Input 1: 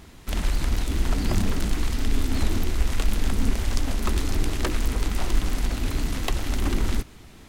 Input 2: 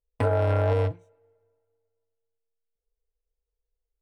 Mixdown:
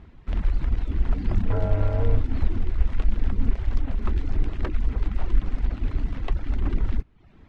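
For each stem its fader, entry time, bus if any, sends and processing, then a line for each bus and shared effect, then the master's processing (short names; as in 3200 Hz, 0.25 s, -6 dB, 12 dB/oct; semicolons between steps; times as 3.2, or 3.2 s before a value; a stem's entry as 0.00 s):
-5.5 dB, 0.00 s, no send, reverb removal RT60 0.66 s
-7.5 dB, 1.30 s, no send, dry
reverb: off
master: LPF 2300 Hz 12 dB/oct; low shelf 170 Hz +8.5 dB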